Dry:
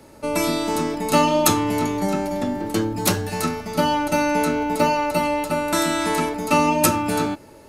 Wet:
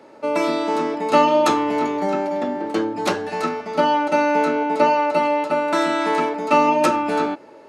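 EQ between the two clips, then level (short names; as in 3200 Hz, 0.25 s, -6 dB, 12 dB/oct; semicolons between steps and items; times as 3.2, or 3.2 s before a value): HPF 360 Hz 12 dB/oct; tape spacing loss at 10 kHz 23 dB; +5.5 dB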